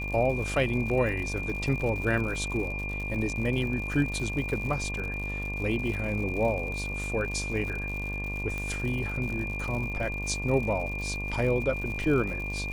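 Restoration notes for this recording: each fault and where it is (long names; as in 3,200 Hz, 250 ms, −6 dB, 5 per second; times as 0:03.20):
mains buzz 50 Hz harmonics 23 −35 dBFS
surface crackle 120 per second −35 dBFS
whistle 2,400 Hz −34 dBFS
0:08.58: click −21 dBFS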